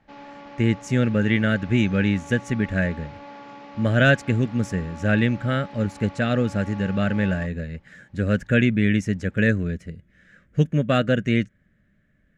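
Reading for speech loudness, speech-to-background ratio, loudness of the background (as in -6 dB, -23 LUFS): -22.5 LUFS, 19.5 dB, -42.0 LUFS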